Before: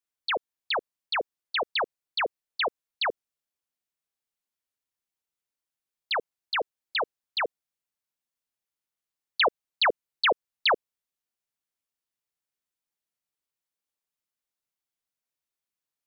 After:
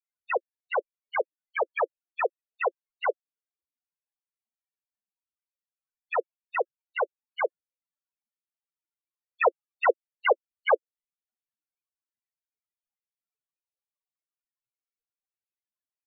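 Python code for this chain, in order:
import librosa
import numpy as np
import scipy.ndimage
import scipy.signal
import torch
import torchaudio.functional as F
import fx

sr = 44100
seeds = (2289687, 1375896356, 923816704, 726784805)

y = fx.spec_topn(x, sr, count=8)
y = scipy.signal.sosfilt(scipy.signal.ellip(4, 1.0, 40, 2600.0, 'lowpass', fs=sr, output='sos'), y)
y = F.gain(torch.from_numpy(y), 7.5).numpy()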